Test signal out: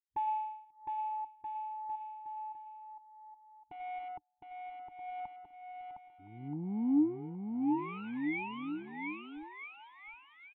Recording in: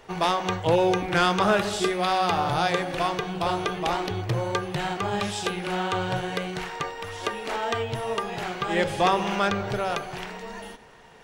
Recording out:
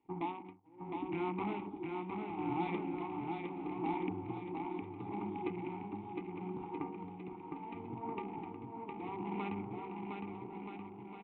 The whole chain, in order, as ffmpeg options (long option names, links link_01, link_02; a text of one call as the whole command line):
ffmpeg -i in.wav -filter_complex "[0:a]aeval=exprs='0.266*(cos(1*acos(clip(val(0)/0.266,-1,1)))-cos(1*PI/2))+0.0531*(cos(4*acos(clip(val(0)/0.266,-1,1)))-cos(4*PI/2))+0.00211*(cos(5*acos(clip(val(0)/0.266,-1,1)))-cos(5*PI/2))+0.0531*(cos(6*acos(clip(val(0)/0.266,-1,1)))-cos(6*PI/2))+0.0237*(cos(7*acos(clip(val(0)/0.266,-1,1)))-cos(7*PI/2))':channel_layout=same,lowshelf=frequency=350:gain=11.5,acompressor=threshold=-20dB:ratio=8,afwtdn=0.0178,aresample=8000,asoftclip=type=tanh:threshold=-23.5dB,aresample=44100,asplit=3[link_01][link_02][link_03];[link_01]bandpass=frequency=300:width_type=q:width=8,volume=0dB[link_04];[link_02]bandpass=frequency=870:width_type=q:width=8,volume=-6dB[link_05];[link_03]bandpass=frequency=2240:width_type=q:width=8,volume=-9dB[link_06];[link_04][link_05][link_06]amix=inputs=3:normalize=0,tremolo=f=0.74:d=0.97,aecho=1:1:710|1278|1732|2096|2387:0.631|0.398|0.251|0.158|0.1,volume=7.5dB" out.wav